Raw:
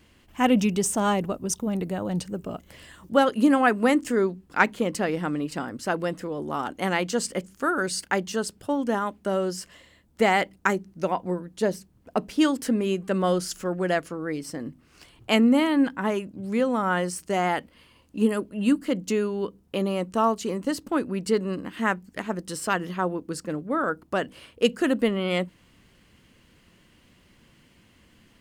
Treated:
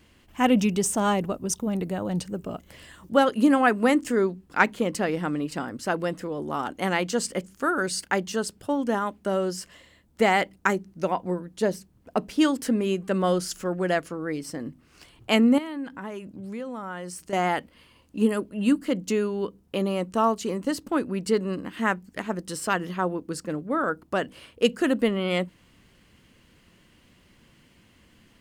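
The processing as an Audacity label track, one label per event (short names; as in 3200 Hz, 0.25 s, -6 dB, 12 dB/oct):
15.580000	17.330000	compressor 2.5:1, threshold -36 dBFS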